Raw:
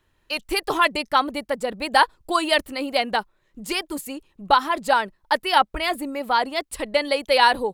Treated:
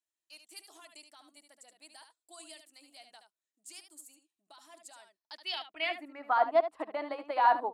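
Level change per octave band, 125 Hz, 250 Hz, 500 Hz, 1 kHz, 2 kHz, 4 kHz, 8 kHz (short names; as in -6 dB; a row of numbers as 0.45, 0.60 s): n/a, -19.5 dB, -11.5 dB, -11.5 dB, -17.0 dB, -17.5 dB, -14.5 dB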